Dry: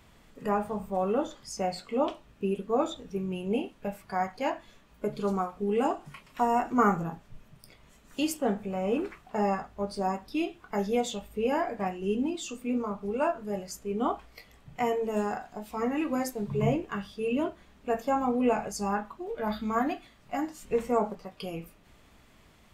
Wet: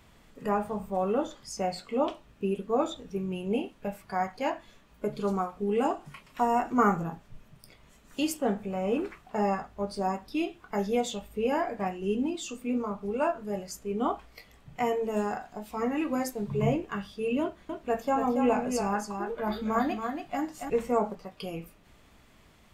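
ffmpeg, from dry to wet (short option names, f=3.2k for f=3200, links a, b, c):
-filter_complex "[0:a]asettb=1/sr,asplit=3[a][b][c];[a]atrim=end=17.414[d];[b]atrim=start=17.41:end=20.7,asetpts=PTS-STARTPTS,afade=t=in:d=0.004:c=qsin,afade=t=out:st=3.286:d=0.004:c=qsin,aecho=1:1:281:0.501,atrim=end_sample=145089[e];[c]atrim=start=20.696[f];[d][e]acrossfade=d=0.004:c1=hsin:c2=qsin[g];[g][f]acrossfade=d=0.004:c1=qsin:c2=hsin"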